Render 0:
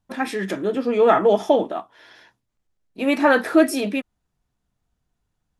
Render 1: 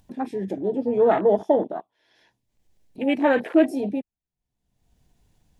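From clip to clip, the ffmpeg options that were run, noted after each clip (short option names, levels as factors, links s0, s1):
-af "afwtdn=0.0631,equalizer=f=1300:w=2.6:g=-11.5,acompressor=mode=upward:threshold=0.0158:ratio=2.5,volume=0.841"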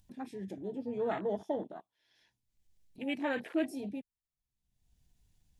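-af "equalizer=f=560:w=0.35:g=-11,volume=0.562"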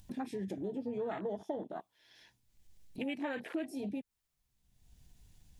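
-af "acompressor=threshold=0.00562:ratio=5,volume=2.82"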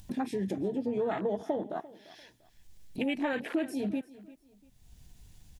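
-af "aecho=1:1:345|690:0.112|0.0325,volume=2.11"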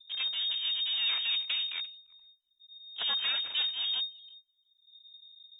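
-af "aeval=exprs='abs(val(0))':c=same,lowpass=f=3100:t=q:w=0.5098,lowpass=f=3100:t=q:w=0.6013,lowpass=f=3100:t=q:w=0.9,lowpass=f=3100:t=q:w=2.563,afreqshift=-3700,anlmdn=0.00631"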